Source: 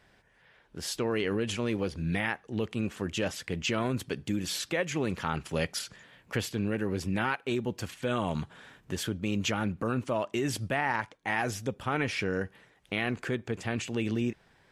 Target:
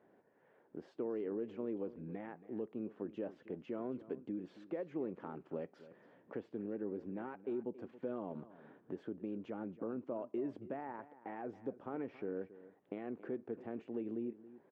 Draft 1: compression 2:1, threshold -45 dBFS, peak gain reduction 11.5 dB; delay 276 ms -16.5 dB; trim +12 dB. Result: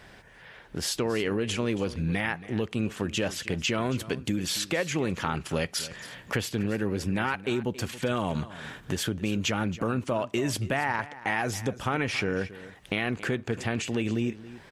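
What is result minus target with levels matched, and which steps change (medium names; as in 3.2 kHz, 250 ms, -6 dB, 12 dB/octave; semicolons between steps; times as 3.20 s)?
500 Hz band -3.5 dB
add after compression: ladder band-pass 400 Hz, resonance 25%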